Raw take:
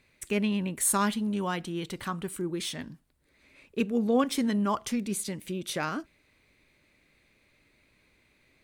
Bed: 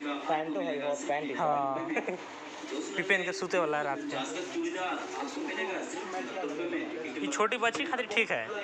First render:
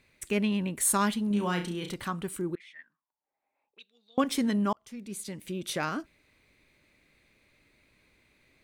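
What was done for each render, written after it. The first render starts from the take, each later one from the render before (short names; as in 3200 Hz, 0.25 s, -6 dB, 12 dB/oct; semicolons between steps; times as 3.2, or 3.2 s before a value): 1.27–1.94 flutter echo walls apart 5.8 m, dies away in 0.33 s; 2.55–4.18 auto-wah 760–3800 Hz, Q 11, up, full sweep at -27 dBFS; 4.73–5.66 fade in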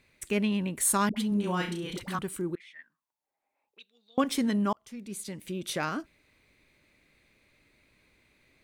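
1.09–2.19 dispersion highs, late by 74 ms, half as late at 470 Hz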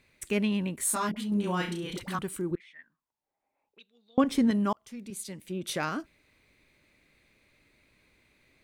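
0.76–1.32 detuned doubles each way 14 cents; 2.51–4.51 tilt -2 dB/oct; 5.1–5.67 three-band expander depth 70%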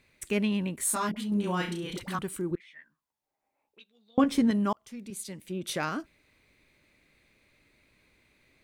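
2.66–4.42 doubler 14 ms -7 dB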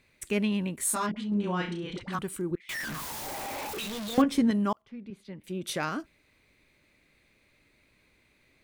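1.06–2.13 air absorption 110 m; 2.69–4.22 zero-crossing step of -29.5 dBFS; 4.82–5.44 air absorption 350 m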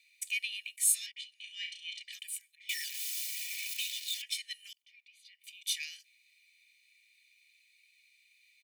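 steep high-pass 2100 Hz 72 dB/oct; comb 1.7 ms, depth 93%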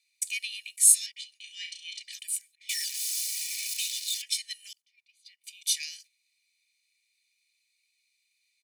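gate -58 dBFS, range -11 dB; band shelf 6900 Hz +9 dB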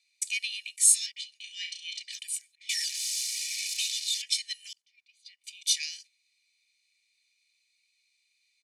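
LPF 6900 Hz 12 dB/oct; tilt +1.5 dB/oct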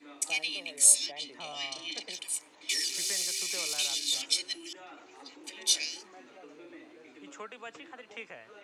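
add bed -16 dB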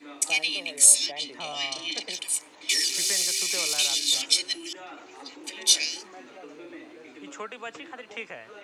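gain +6.5 dB; limiter -3 dBFS, peak gain reduction 3 dB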